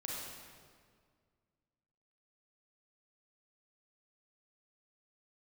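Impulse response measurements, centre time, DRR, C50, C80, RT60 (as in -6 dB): 114 ms, -4.0 dB, -2.5 dB, 0.0 dB, 1.9 s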